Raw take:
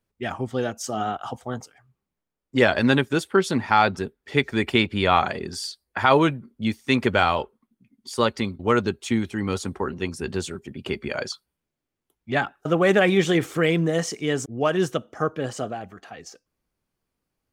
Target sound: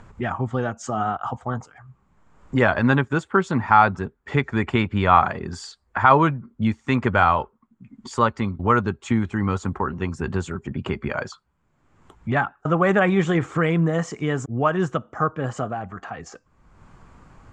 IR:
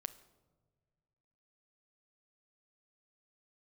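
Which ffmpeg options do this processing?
-filter_complex "[0:a]equalizer=f=1100:t=o:w=1.7:g=15,asplit=2[s0][s1];[s1]acompressor=mode=upward:threshold=0.251:ratio=2.5,volume=1.06[s2];[s0][s2]amix=inputs=2:normalize=0,lowpass=f=7300:t=q:w=6.5,bass=f=250:g=14,treble=f=4000:g=-14,volume=0.178"

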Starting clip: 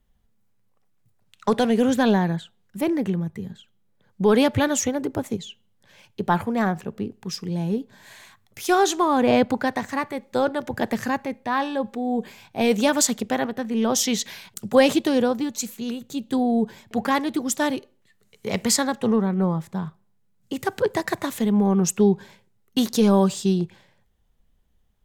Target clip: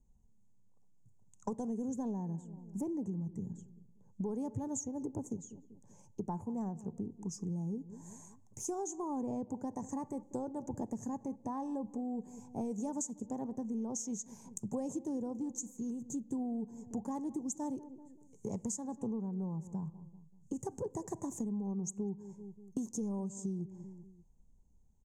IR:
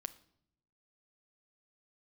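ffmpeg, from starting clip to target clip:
-filter_complex "[0:a]firequalizer=gain_entry='entry(230,0);entry(640,-10);entry(930,-3);entry(1300,-25);entry(2100,-27);entry(4100,-29);entry(6500,6);entry(13000,-18)':delay=0.05:min_phase=1,asplit=2[s0][s1];[s1]adelay=193,lowpass=f=890:p=1,volume=0.1,asplit=2[s2][s3];[s3]adelay=193,lowpass=f=890:p=1,volume=0.42,asplit=2[s4][s5];[s5]adelay=193,lowpass=f=890:p=1,volume=0.42[s6];[s0][s2][s4][s6]amix=inputs=4:normalize=0,acompressor=threshold=0.0178:ratio=6,asplit=2[s7][s8];[1:a]atrim=start_sample=2205,lowpass=f=3400:w=0.5412,lowpass=f=3400:w=1.3066[s9];[s8][s9]afir=irnorm=-1:irlink=0,volume=0.447[s10];[s7][s10]amix=inputs=2:normalize=0,volume=0.668"

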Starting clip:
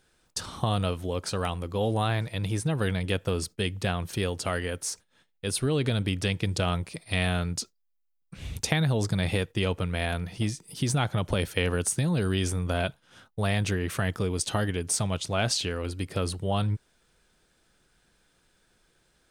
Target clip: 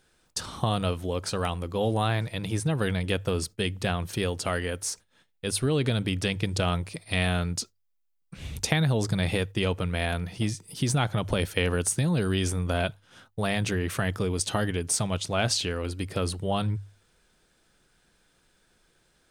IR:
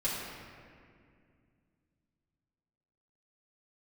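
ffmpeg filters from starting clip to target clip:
-af "bandreject=f=50:t=h:w=6,bandreject=f=100:t=h:w=6,volume=1.12"

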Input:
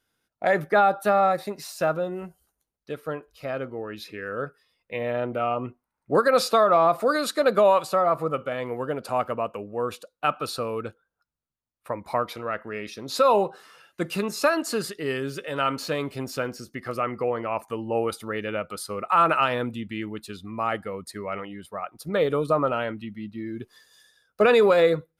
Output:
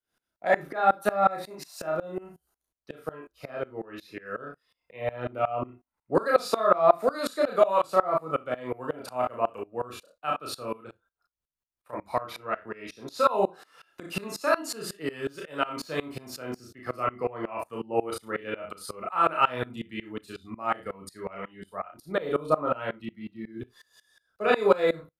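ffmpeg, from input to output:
-filter_complex "[0:a]acrossover=split=200|1300|2000[s0][s1][s2][s3];[s1]crystalizer=i=6.5:c=0[s4];[s0][s4][s2][s3]amix=inputs=4:normalize=0,aecho=1:1:32|56:0.631|0.2,asplit=3[s5][s6][s7];[s5]afade=t=out:st=10.76:d=0.02[s8];[s6]acompressor=threshold=0.0224:ratio=6,afade=t=in:st=10.76:d=0.02,afade=t=out:st=11.92:d=0.02[s9];[s7]afade=t=in:st=11.92:d=0.02[s10];[s8][s9][s10]amix=inputs=3:normalize=0,asplit=2[s11][s12];[s12]adelay=35,volume=0.447[s13];[s11][s13]amix=inputs=2:normalize=0,aeval=exprs='val(0)*pow(10,-23*if(lt(mod(-5.5*n/s,1),2*abs(-5.5)/1000),1-mod(-5.5*n/s,1)/(2*abs(-5.5)/1000),(mod(-5.5*n/s,1)-2*abs(-5.5)/1000)/(1-2*abs(-5.5)/1000))/20)':c=same"

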